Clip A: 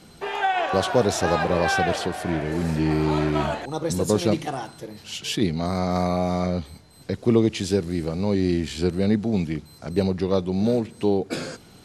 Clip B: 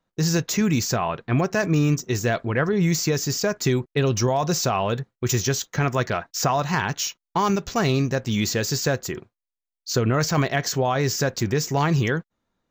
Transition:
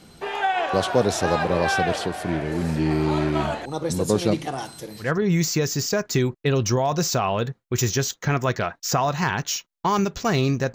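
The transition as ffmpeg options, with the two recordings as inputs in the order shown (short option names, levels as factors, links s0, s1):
-filter_complex "[0:a]asettb=1/sr,asplit=3[s0][s1][s2];[s0]atrim=end=4.584[s3];[s1]atrim=start=4.58:end=5.12,asetpts=PTS-STARTPTS,afade=t=in:d=0.004:c=qsin,afade=t=out:st=0.536:d=0.004:c=qsin,highshelf=f=3800:g=10[s4];[s2]atrim=start=5.116[s5];[s3][s4]acrossfade=d=0.004:c1=hsin:c2=qsin[s6];[s6][s5]acrossfade=d=0.004:c1=qsin:c2=hsin,apad=whole_dur=10.74,atrim=end=10.74,atrim=end=5.12,asetpts=PTS-STARTPTS[s7];[1:a]atrim=start=2.49:end=8.25,asetpts=PTS-STARTPTS[s8];[s7][s8]acrossfade=d=0.14:c1=tri:c2=tri"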